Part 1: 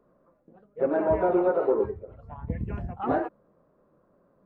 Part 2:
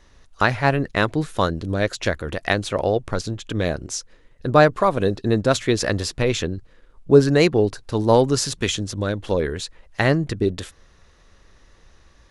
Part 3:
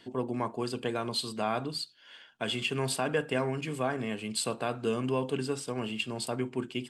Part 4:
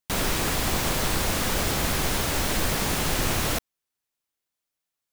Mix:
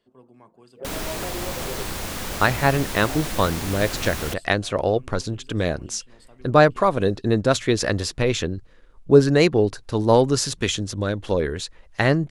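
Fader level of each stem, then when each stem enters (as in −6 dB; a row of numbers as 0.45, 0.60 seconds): −11.5, −0.5, −19.0, −5.0 decibels; 0.00, 2.00, 0.00, 0.75 seconds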